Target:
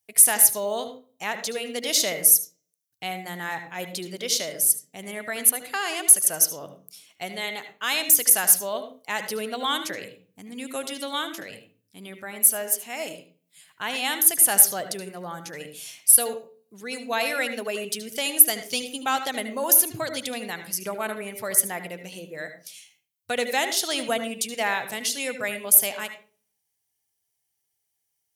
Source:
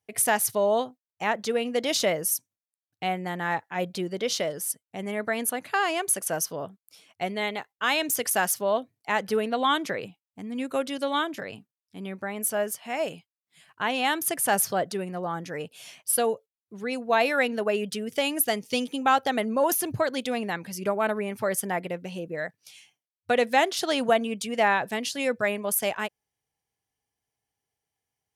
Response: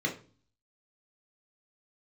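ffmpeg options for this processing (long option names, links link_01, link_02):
-filter_complex "[0:a]crystalizer=i=5:c=0,asplit=2[link_01][link_02];[1:a]atrim=start_sample=2205,adelay=74[link_03];[link_02][link_03]afir=irnorm=-1:irlink=0,volume=-15.5dB[link_04];[link_01][link_04]amix=inputs=2:normalize=0,volume=-6.5dB"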